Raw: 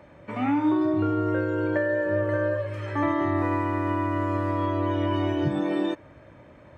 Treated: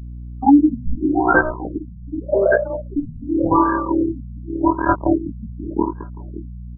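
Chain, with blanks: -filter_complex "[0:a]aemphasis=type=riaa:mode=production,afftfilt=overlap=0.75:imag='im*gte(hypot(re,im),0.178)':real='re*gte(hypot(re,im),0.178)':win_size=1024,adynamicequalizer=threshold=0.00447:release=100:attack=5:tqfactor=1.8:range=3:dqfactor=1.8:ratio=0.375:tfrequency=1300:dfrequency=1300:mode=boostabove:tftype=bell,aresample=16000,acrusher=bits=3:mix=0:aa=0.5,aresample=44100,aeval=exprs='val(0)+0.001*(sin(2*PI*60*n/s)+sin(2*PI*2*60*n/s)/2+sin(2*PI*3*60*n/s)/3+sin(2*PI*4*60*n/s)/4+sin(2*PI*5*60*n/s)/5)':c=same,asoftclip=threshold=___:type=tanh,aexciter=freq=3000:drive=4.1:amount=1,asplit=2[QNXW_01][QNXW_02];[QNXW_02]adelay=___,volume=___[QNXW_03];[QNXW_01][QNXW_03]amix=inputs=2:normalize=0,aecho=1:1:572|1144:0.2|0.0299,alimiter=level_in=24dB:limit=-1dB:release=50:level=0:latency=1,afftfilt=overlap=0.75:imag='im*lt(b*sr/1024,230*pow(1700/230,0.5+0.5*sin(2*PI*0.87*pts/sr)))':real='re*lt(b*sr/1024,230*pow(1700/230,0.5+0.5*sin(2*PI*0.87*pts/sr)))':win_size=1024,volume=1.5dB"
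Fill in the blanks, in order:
-25dB, 18, -3.5dB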